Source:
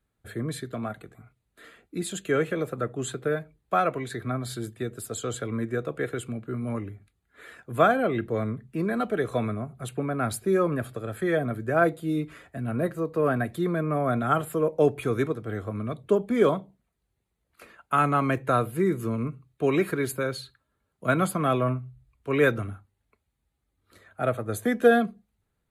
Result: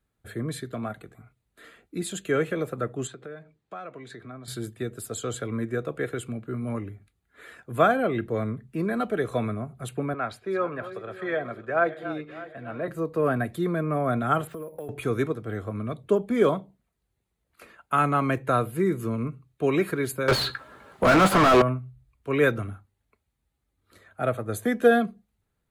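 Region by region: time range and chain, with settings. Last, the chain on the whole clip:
3.07–4.48 s: compression 2.5:1, threshold -42 dBFS + band-pass 130–6400 Hz
10.14–12.88 s: backward echo that repeats 301 ms, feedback 57%, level -13 dB + three-band isolator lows -12 dB, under 430 Hz, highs -23 dB, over 4.4 kHz
14.47–14.89 s: compression 16:1, threshold -32 dBFS + careless resampling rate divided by 4×, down filtered, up hold
20.28–21.62 s: overdrive pedal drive 41 dB, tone 1.3 kHz, clips at -9.5 dBFS + doubling 16 ms -11 dB
whole clip: none

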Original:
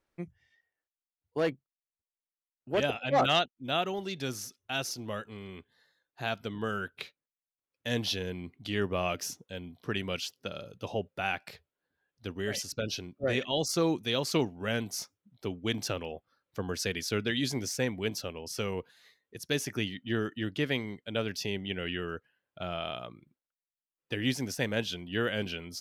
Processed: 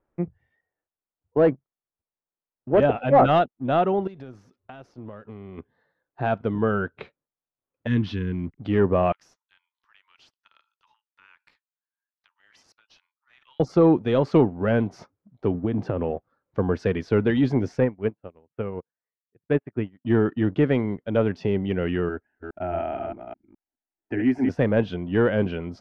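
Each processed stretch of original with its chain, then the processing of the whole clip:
4.07–5.58 s: treble shelf 8.8 kHz +8.5 dB + compression 12:1, threshold -45 dBFS
7.87–8.58 s: hysteresis with a dead band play -55.5 dBFS + Butterworth band-stop 640 Hz, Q 0.67
9.12–13.60 s: compression, threshold -36 dBFS + Chebyshev high-pass 860 Hz, order 10 + differentiator
15.54–16.11 s: high-pass 140 Hz 6 dB/octave + tilt EQ -2.5 dB/octave + compression 10:1, threshold -31 dBFS
17.80–20.05 s: low-pass 2.8 kHz 24 dB/octave + upward expansion 2.5:1, over -49 dBFS
22.09–24.49 s: chunks repeated in reverse 208 ms, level -5 dB + static phaser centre 750 Hz, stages 8
whole clip: waveshaping leveller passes 1; low-pass 1.1 kHz 12 dB/octave; trim +8.5 dB

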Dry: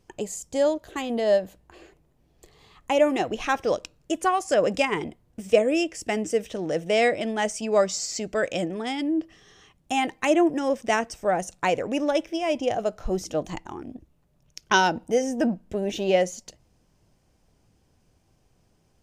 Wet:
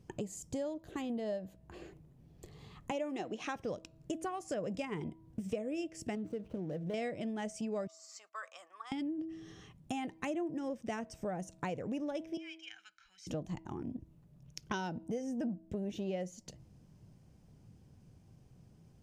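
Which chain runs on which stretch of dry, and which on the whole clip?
2.91–3.56 s: band-pass 250–7400 Hz + treble shelf 5.1 kHz +7 dB
6.15–6.94 s: median filter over 25 samples + treble shelf 5.3 kHz -5.5 dB + compression 1.5:1, threshold -33 dBFS
7.87–8.92 s: gate -38 dBFS, range -15 dB + ladder high-pass 1.1 kHz, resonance 85% + dynamic bell 2.3 kHz, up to -5 dB, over -51 dBFS, Q 0.82
12.37–13.27 s: inverse Chebyshev high-pass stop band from 690 Hz, stop band 50 dB + tape spacing loss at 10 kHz 22 dB + comb 1.3 ms, depth 63%
whole clip: peaking EQ 140 Hz +14.5 dB 2.2 oct; de-hum 323.5 Hz, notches 3; compression 4:1, threshold -33 dBFS; trim -5 dB

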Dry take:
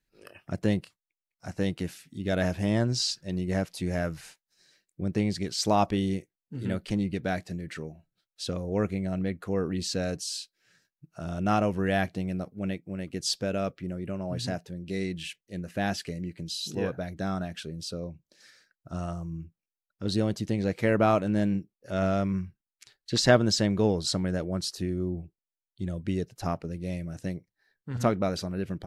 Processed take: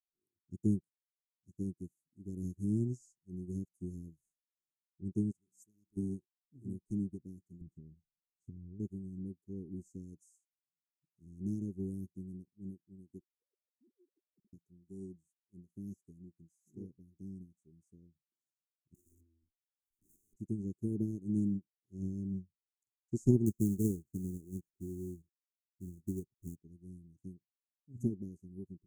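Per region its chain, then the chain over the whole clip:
5.31–5.97 s: pre-emphasis filter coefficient 0.8 + de-hum 62.87 Hz, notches 5
7.61–8.80 s: tone controls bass +14 dB, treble -9 dB + compression 5:1, threshold -29 dBFS
13.20–14.53 s: formants replaced by sine waves + compression 5:1, threshold -40 dBFS
18.94–20.36 s: comb filter that takes the minimum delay 3 ms + integer overflow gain 33.5 dB + swell ahead of each attack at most 130 dB/s
23.46–26.56 s: Savitzky-Golay filter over 65 samples + companded quantiser 4-bit
whole clip: Chebyshev band-stop 380–6600 Hz, order 5; upward expansion 2.5:1, over -45 dBFS; trim +1 dB

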